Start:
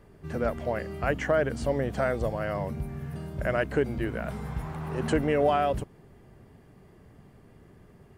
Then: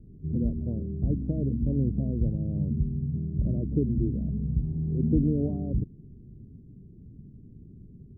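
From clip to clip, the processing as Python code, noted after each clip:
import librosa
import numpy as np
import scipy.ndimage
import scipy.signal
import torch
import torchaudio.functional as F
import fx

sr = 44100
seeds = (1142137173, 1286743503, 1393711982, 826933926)

y = scipy.signal.sosfilt(scipy.signal.cheby2(4, 80, 1700.0, 'lowpass', fs=sr, output='sos'), x)
y = F.gain(torch.from_numpy(y), 7.0).numpy()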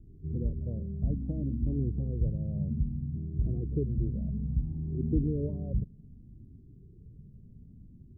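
y = fx.comb_cascade(x, sr, direction='rising', hz=0.61)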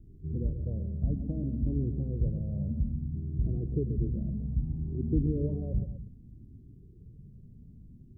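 y = fx.echo_multitap(x, sr, ms=(131, 246), db=(-10.0, -14.5))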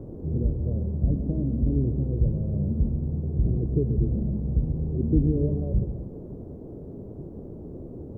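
y = fx.dmg_noise_band(x, sr, seeds[0], low_hz=57.0, high_hz=440.0, level_db=-46.0)
y = F.gain(torch.from_numpy(y), 6.0).numpy()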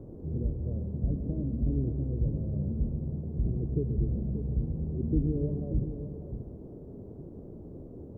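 y = x + 10.0 ** (-9.5 / 20.0) * np.pad(x, (int(584 * sr / 1000.0), 0))[:len(x)]
y = F.gain(torch.from_numpy(y), -6.0).numpy()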